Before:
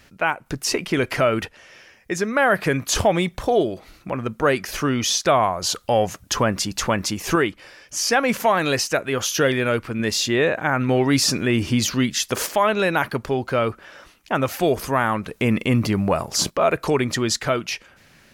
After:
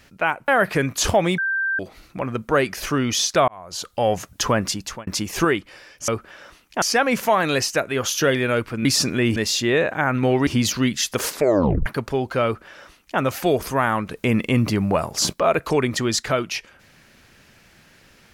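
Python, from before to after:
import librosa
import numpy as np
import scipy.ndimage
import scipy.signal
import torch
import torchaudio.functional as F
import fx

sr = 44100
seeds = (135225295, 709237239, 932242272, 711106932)

y = fx.edit(x, sr, fx.cut(start_s=0.48, length_s=1.91),
    fx.bleep(start_s=3.29, length_s=0.41, hz=1570.0, db=-19.5),
    fx.fade_in_span(start_s=5.39, length_s=0.67),
    fx.fade_out_span(start_s=6.59, length_s=0.39),
    fx.move(start_s=11.13, length_s=0.51, to_s=10.02),
    fx.tape_stop(start_s=12.42, length_s=0.61),
    fx.duplicate(start_s=13.62, length_s=0.74, to_s=7.99), tone=tone)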